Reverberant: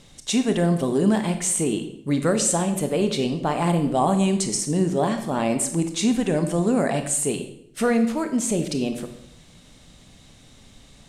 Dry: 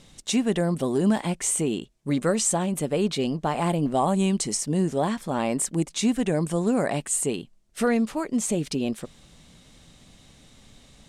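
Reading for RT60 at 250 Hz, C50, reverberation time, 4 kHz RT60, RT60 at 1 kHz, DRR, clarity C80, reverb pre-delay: 0.90 s, 9.5 dB, 0.70 s, 0.60 s, 0.65 s, 7.0 dB, 12.0 dB, 24 ms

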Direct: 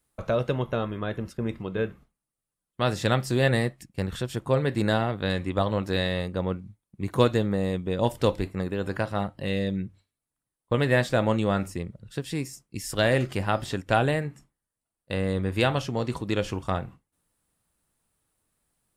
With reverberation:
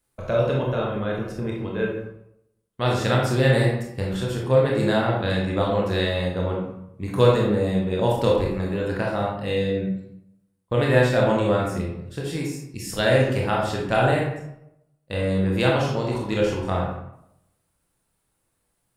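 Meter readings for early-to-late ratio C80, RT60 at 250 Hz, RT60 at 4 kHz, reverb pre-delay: 6.0 dB, 0.80 s, 0.50 s, 22 ms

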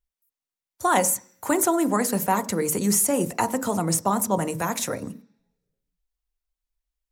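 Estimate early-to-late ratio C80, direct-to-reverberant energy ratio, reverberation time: 21.5 dB, 11.5 dB, 0.50 s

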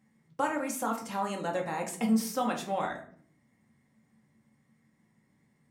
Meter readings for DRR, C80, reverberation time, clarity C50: 0.0 dB, 13.5 dB, 0.55 s, 9.0 dB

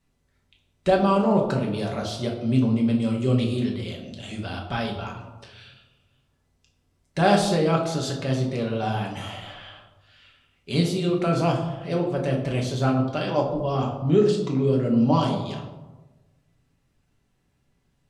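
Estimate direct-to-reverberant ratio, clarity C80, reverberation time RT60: −1.0 dB, 8.0 dB, 1.2 s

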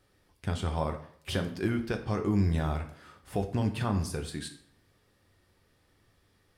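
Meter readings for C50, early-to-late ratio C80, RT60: 11.0 dB, 14.0 dB, 0.60 s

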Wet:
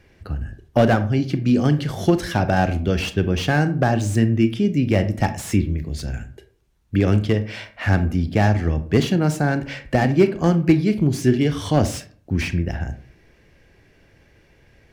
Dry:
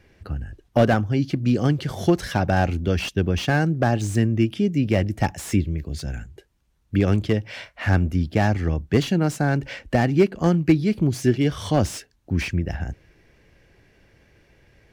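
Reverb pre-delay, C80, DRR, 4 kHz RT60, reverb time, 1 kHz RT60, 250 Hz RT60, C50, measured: 26 ms, 18.5 dB, 10.0 dB, 0.25 s, 0.50 s, 0.45 s, 0.55 s, 14.0 dB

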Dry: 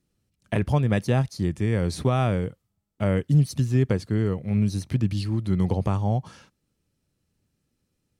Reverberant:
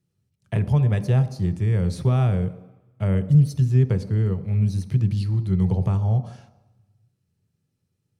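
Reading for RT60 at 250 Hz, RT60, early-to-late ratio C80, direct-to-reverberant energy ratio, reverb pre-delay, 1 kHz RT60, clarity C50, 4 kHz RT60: 0.80 s, 1.0 s, 15.5 dB, 10.0 dB, 3 ms, 1.1 s, 14.0 dB, 1.0 s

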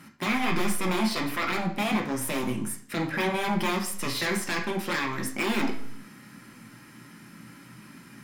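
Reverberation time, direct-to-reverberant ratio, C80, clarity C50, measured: 0.70 s, 0.5 dB, 12.5 dB, 8.5 dB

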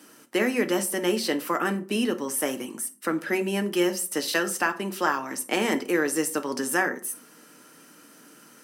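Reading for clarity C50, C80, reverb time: 16.5 dB, 22.0 dB, 0.40 s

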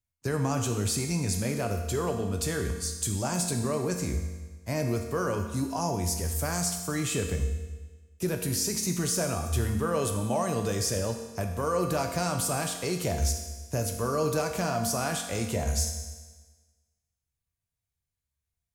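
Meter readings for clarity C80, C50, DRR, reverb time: 7.5 dB, 6.0 dB, 3.0 dB, 1.3 s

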